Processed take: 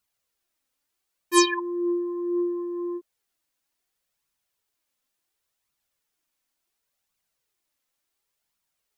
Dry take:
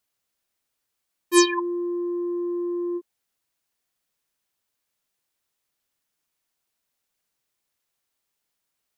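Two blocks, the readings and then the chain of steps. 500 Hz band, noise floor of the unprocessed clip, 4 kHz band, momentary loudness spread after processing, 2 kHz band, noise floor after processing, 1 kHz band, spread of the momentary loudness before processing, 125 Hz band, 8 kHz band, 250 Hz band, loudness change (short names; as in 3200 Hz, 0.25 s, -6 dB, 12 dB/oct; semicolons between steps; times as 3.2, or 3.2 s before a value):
-1.5 dB, -80 dBFS, -0.5 dB, 12 LU, -0.5 dB, -81 dBFS, +1.0 dB, 10 LU, n/a, -1.5 dB, -1.5 dB, -1.0 dB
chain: flange 0.7 Hz, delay 0.7 ms, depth 3.3 ms, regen +43%; gain +3.5 dB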